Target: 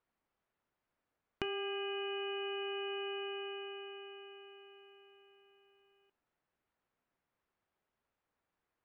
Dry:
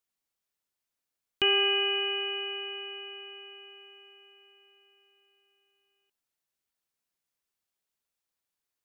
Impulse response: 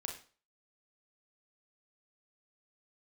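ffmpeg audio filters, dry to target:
-filter_complex "[0:a]lowpass=1.6k,acompressor=threshold=-45dB:ratio=16,asoftclip=type=tanh:threshold=-25.5dB,asplit=2[a][b];[1:a]atrim=start_sample=2205,asetrate=66150,aresample=44100[c];[b][c]afir=irnorm=-1:irlink=0,volume=-13.5dB[d];[a][d]amix=inputs=2:normalize=0,volume=8.5dB"

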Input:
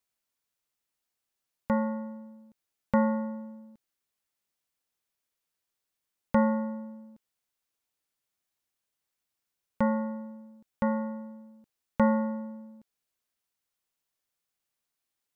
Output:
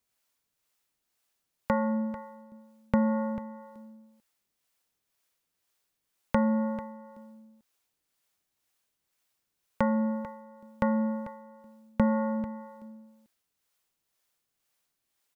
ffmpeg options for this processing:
-filter_complex "[0:a]acompressor=threshold=-29dB:ratio=3,acrossover=split=420[a][b];[a]aeval=exprs='val(0)*(1-0.5/2+0.5/2*cos(2*PI*2*n/s))':c=same[c];[b]aeval=exprs='val(0)*(1-0.5/2-0.5/2*cos(2*PI*2*n/s))':c=same[d];[c][d]amix=inputs=2:normalize=0,asplit=2[e][f];[f]aecho=0:1:443:0.188[g];[e][g]amix=inputs=2:normalize=0,volume=8dB"

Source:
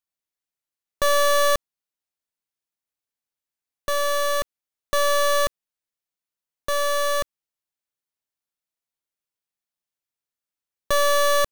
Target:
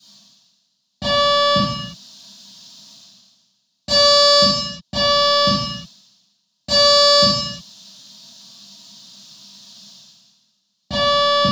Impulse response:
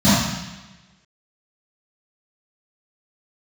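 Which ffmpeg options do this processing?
-filter_complex "[0:a]highpass=f=130:w=0.5412,highpass=f=130:w=1.3066,areverse,acompressor=mode=upward:threshold=-41dB:ratio=2.5,areverse,aeval=exprs='0.0631*(abs(mod(val(0)/0.0631+3,4)-2)-1)':c=same,acrossover=split=5100[a][b];[a]aexciter=amount=9:drive=8.9:freq=3.3k[c];[b]aeval=exprs='(mod(188*val(0)+1,2)-1)/188':c=same[d];[c][d]amix=inputs=2:normalize=0[e];[1:a]atrim=start_sample=2205,afade=t=out:st=0.43:d=0.01,atrim=end_sample=19404[f];[e][f]afir=irnorm=-1:irlink=0,volume=-12.5dB"

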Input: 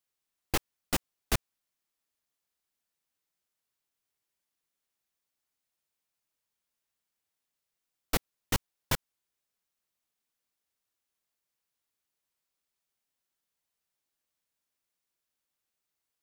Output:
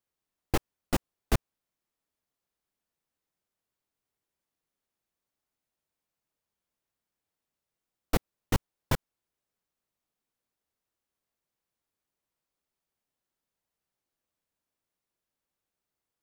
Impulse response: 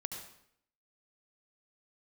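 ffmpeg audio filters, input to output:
-af "tiltshelf=f=1.3k:g=5"

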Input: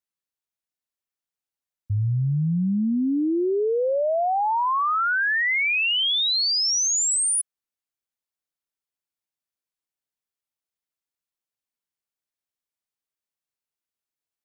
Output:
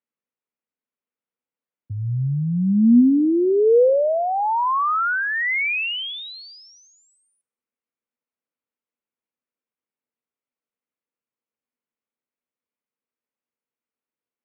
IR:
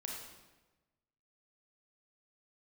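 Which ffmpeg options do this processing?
-filter_complex "[0:a]highpass=f=100:w=0.5412,highpass=f=100:w=1.3066,equalizer=f=100:t=q:w=4:g=-6,equalizer=f=160:t=q:w=4:g=-3,equalizer=f=240:t=q:w=4:g=9,equalizer=f=480:t=q:w=4:g=7,equalizer=f=730:t=q:w=4:g=-3,equalizer=f=1.7k:t=q:w=4:g=-4,lowpass=f=2.5k:w=0.5412,lowpass=f=2.5k:w=1.3066,asplit=2[a][b];[1:a]atrim=start_sample=2205[c];[b][c]afir=irnorm=-1:irlink=0,volume=-20.5dB[d];[a][d]amix=inputs=2:normalize=0,volume=2dB"

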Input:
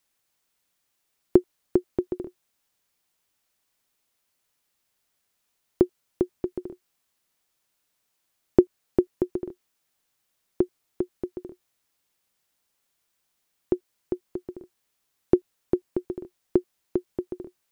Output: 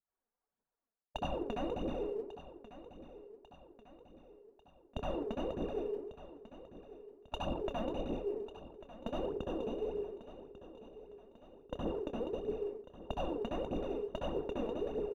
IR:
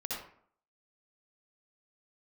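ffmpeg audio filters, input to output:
-filter_complex "[0:a]acrossover=split=110[a][b];[b]acrusher=samples=16:mix=1:aa=0.000001[c];[a][c]amix=inputs=2:normalize=0,agate=range=-33dB:threshold=-44dB:ratio=3:detection=peak,lowpass=1.2k[d];[1:a]atrim=start_sample=2205,asetrate=34398,aresample=44100[e];[d][e]afir=irnorm=-1:irlink=0,afftfilt=real='re*lt(hypot(re,im),0.282)':imag='im*lt(hypot(re,im),0.282)':win_size=1024:overlap=0.75,asplit=2[f][g];[g]adelay=32,volume=-12.5dB[h];[f][h]amix=inputs=2:normalize=0,asetrate=51597,aresample=44100,aphaser=in_gain=1:out_gain=1:delay=4.8:decay=0.54:speed=1.6:type=triangular,equalizer=f=120:t=o:w=0.9:g=-8,areverse,acompressor=threshold=-46dB:ratio=4,areverse,aecho=1:1:1145|2290|3435|4580|5725:0.178|0.0907|0.0463|0.0236|0.012,volume=9dB"

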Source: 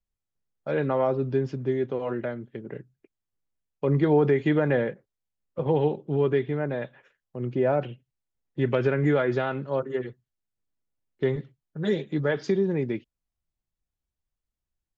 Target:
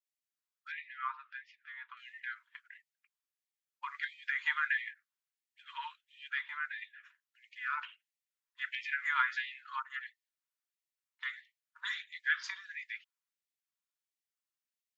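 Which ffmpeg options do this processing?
-filter_complex "[0:a]asettb=1/sr,asplit=3[a][b][c];[a]atrim=end=0.724[d];[b]atrim=start=0.72:end=1.97,asetpts=PTS-STARTPTS,afade=t=in:d=0.004:c=qsin,afade=t=out:st=1.246:d=0.004:c=qsin,highpass=570,lowpass=2.4k[e];[c]atrim=start=1.966[f];[d][e]acrossfade=d=0.004:c1=hsin:c2=qsin[g];[g][f]acrossfade=d=0.004:c1=qsin:c2=hsin,adynamicequalizer=threshold=0.00891:dfrequency=1500:dqfactor=0.74:tfrequency=1500:tqfactor=0.74:attack=5:release=100:ratio=0.375:range=2.5:mode=boostabove:tftype=bell,afftfilt=real='re*gte(b*sr/1024,870*pow(1800/870,0.5+0.5*sin(2*PI*1.5*pts/sr)))':imag='im*gte(b*sr/1024,870*pow(1800/870,0.5+0.5*sin(2*PI*1.5*pts/sr)))':win_size=1024:overlap=0.75,volume=-1.5dB"

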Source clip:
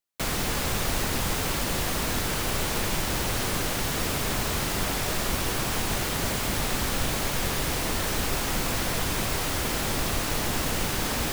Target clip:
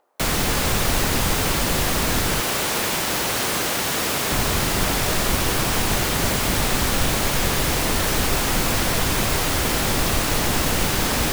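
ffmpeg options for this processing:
-filter_complex "[0:a]asettb=1/sr,asplit=3[a][b][c];[a]atrim=end=2.404[d];[b]atrim=start=2.4:end=4.31,asetpts=PTS-STARTPTS,afade=t=in:d=0.004:c=qsin,afade=t=out:st=1.906:d=0.004:c=qsin,highpass=f=300:p=1[e];[c]atrim=start=4.306[f];[d][e]acrossfade=d=0.004:c1=hsin:c2=qsin[g];[g][f]acrossfade=d=0.004:c1=qsin:c2=hsin,acrossover=split=400|1000|2200[h][i][j][k];[i]acompressor=mode=upward:threshold=-50dB:ratio=2.5[l];[h][l][j][k]amix=inputs=4:normalize=0,volume=6.5dB"

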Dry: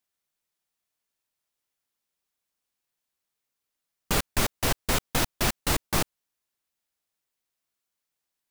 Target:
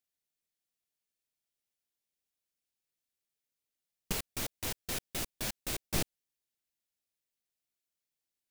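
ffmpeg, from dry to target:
-filter_complex "[0:a]equalizer=f=1.1k:t=o:w=1:g=-9.5,asettb=1/sr,asplit=3[a][b][c];[a]atrim=end=4.124[d];[b]atrim=start=4.12:end=5.94,asetpts=PTS-STARTPTS,afade=t=in:d=0.004:c=qsin,afade=t=out:st=1.816:d=0.004:c=qsin,aeval=exprs='0.0596*(abs(mod(val(0)/0.0596+3,4)-2)-1)':c=same[e];[c]atrim=start=5.936[f];[d][e]acrossfade=d=0.004:c1=hsin:c2=qsin[g];[g][f]acrossfade=d=0.004:c1=qsin:c2=hsin,volume=-5.5dB"

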